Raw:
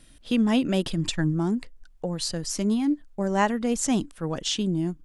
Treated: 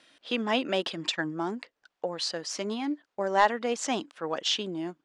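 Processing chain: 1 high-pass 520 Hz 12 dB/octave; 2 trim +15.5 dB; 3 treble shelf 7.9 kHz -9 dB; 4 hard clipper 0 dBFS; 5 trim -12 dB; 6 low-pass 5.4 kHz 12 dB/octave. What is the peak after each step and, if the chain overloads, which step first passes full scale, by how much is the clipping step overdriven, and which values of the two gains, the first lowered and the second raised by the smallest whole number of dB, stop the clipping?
-9.5 dBFS, +6.0 dBFS, +5.5 dBFS, 0.0 dBFS, -12.0 dBFS, -11.5 dBFS; step 2, 5.5 dB; step 2 +9.5 dB, step 5 -6 dB

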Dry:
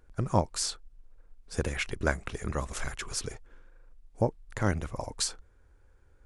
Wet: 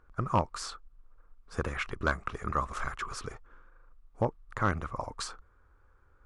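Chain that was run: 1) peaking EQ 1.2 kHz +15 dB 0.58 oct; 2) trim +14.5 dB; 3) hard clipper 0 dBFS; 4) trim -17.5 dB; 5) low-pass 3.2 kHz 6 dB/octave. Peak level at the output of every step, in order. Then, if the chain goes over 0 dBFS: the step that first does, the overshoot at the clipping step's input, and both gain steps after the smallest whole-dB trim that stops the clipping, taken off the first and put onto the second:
-5.0 dBFS, +9.5 dBFS, 0.0 dBFS, -17.5 dBFS, -17.5 dBFS; step 2, 9.5 dB; step 2 +4.5 dB, step 4 -7.5 dB

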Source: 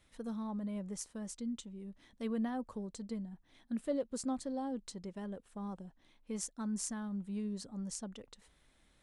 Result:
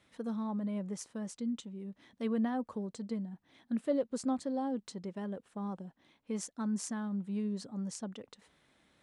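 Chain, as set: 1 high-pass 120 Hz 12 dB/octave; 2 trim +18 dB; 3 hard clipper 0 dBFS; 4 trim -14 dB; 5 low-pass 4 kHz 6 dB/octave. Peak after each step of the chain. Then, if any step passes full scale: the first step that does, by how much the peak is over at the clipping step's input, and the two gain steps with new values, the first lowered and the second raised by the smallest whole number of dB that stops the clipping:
-20.5 dBFS, -2.5 dBFS, -2.5 dBFS, -16.5 dBFS, -20.5 dBFS; nothing clips

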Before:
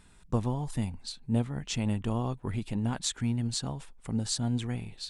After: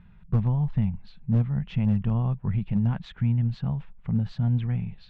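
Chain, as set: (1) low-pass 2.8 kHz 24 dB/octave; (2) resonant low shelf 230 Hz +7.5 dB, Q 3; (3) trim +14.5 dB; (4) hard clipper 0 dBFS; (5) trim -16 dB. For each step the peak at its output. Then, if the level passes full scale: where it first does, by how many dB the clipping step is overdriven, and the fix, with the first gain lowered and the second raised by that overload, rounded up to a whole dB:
-15.0 dBFS, -9.0 dBFS, +5.5 dBFS, 0.0 dBFS, -16.0 dBFS; step 3, 5.5 dB; step 3 +8.5 dB, step 5 -10 dB

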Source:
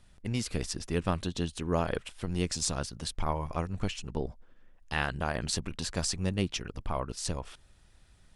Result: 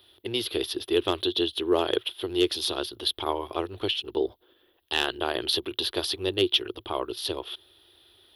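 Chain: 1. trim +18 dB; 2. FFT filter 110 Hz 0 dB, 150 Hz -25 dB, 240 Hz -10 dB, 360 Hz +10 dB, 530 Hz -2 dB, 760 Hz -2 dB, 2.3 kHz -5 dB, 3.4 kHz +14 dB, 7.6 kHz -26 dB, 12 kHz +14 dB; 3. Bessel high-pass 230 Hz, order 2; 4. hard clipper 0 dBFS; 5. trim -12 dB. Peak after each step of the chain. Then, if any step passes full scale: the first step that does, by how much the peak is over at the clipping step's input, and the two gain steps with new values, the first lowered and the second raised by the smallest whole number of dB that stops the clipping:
+6.5 dBFS, +5.0 dBFS, +5.5 dBFS, 0.0 dBFS, -12.0 dBFS; step 1, 5.5 dB; step 1 +12 dB, step 5 -6 dB

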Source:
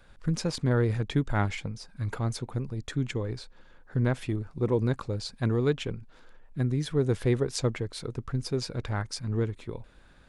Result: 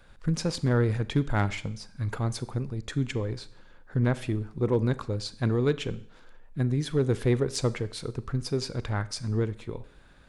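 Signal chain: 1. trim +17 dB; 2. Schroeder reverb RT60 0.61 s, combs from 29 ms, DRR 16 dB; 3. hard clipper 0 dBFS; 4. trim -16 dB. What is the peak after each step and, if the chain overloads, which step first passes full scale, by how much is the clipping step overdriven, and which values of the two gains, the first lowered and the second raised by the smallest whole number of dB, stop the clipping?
+3.0 dBFS, +3.5 dBFS, 0.0 dBFS, -16.0 dBFS; step 1, 3.5 dB; step 1 +13 dB, step 4 -12 dB

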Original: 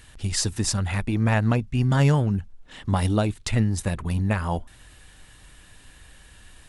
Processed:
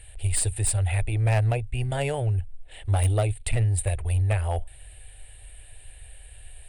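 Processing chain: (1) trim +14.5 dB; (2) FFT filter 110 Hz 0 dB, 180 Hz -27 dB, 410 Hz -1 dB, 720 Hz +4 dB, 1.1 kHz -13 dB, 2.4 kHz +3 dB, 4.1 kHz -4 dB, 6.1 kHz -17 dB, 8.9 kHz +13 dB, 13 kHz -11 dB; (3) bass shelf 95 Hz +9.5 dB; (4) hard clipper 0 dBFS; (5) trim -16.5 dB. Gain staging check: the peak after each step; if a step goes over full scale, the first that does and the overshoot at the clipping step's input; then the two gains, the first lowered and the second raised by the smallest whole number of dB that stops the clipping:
+6.0 dBFS, +5.0 dBFS, +6.5 dBFS, 0.0 dBFS, -16.5 dBFS; step 1, 6.5 dB; step 1 +7.5 dB, step 5 -9.5 dB

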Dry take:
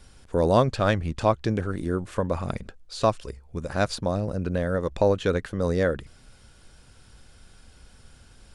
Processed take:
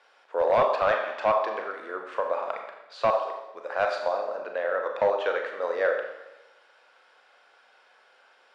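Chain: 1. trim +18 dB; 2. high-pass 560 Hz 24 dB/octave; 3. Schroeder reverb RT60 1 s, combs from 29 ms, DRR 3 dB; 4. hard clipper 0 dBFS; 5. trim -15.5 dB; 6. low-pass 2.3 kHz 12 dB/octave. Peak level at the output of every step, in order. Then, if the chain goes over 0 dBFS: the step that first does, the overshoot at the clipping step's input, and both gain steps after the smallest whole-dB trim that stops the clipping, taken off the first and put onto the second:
+11.0 dBFS, +10.0 dBFS, +10.0 dBFS, 0.0 dBFS, -15.5 dBFS, -15.0 dBFS; step 1, 10.0 dB; step 1 +8 dB, step 5 -5.5 dB

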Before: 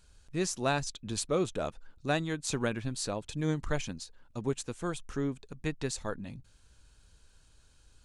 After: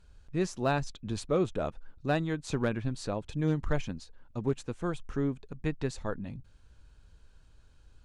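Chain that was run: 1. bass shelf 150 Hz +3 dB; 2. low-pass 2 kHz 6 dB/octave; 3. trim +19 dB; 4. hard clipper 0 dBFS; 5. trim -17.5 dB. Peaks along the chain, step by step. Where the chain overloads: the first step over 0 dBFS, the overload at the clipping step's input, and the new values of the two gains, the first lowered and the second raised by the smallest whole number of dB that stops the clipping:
-15.0 dBFS, -16.0 dBFS, +3.0 dBFS, 0.0 dBFS, -17.5 dBFS; step 3, 3.0 dB; step 3 +16 dB, step 5 -14.5 dB

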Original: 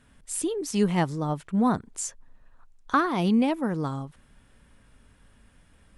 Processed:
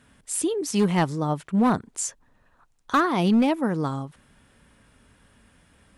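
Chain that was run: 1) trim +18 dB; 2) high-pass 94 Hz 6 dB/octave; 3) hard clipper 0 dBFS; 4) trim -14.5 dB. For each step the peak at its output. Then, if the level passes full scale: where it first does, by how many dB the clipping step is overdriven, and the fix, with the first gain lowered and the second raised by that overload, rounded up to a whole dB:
+7.5 dBFS, +8.0 dBFS, 0.0 dBFS, -14.5 dBFS; step 1, 8.0 dB; step 1 +10 dB, step 4 -6.5 dB

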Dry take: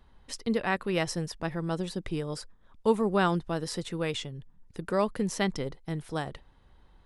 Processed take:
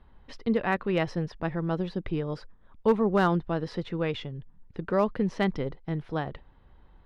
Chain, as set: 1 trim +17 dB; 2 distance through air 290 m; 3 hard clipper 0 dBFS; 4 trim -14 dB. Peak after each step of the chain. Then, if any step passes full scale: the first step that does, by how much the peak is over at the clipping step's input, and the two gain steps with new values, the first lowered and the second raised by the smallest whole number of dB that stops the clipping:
+5.5 dBFS, +4.5 dBFS, 0.0 dBFS, -14.0 dBFS; step 1, 4.5 dB; step 1 +12 dB, step 4 -9 dB

